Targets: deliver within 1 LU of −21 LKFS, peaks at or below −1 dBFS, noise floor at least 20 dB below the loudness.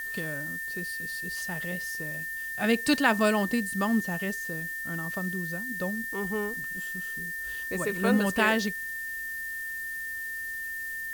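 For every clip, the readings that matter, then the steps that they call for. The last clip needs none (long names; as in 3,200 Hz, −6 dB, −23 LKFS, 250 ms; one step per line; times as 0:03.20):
interfering tone 1,800 Hz; level of the tone −33 dBFS; background noise floor −36 dBFS; target noise floor −50 dBFS; integrated loudness −29.5 LKFS; sample peak −8.5 dBFS; target loudness −21.0 LKFS
→ notch filter 1,800 Hz, Q 30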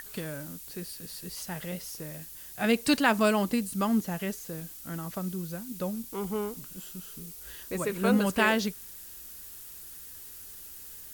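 interfering tone none found; background noise floor −46 dBFS; target noise floor −51 dBFS
→ noise reduction from a noise print 6 dB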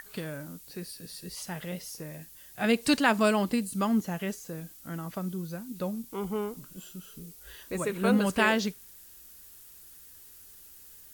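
background noise floor −52 dBFS; integrated loudness −30.0 LKFS; sample peak −10.5 dBFS; target loudness −21.0 LKFS
→ level +9 dB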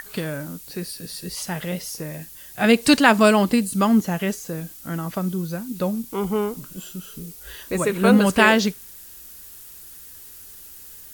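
integrated loudness −21.0 LKFS; sample peak −1.5 dBFS; background noise floor −43 dBFS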